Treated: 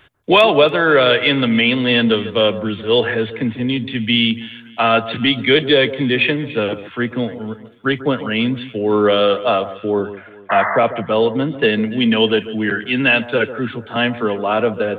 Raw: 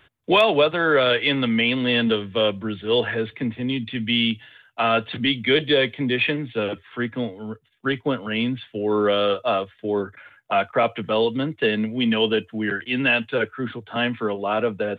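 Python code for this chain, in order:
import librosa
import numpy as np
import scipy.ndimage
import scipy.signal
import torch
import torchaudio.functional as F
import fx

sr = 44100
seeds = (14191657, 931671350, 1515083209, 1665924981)

y = fx.spec_paint(x, sr, seeds[0], shape='noise', start_s=10.49, length_s=0.28, low_hz=610.0, high_hz=2100.0, level_db=-24.0)
y = fx.high_shelf(y, sr, hz=3100.0, db=-9.5, at=(9.76, 11.63))
y = fx.echo_alternate(y, sr, ms=143, hz=1300.0, feedback_pct=54, wet_db=-13)
y = F.gain(torch.from_numpy(y), 5.5).numpy()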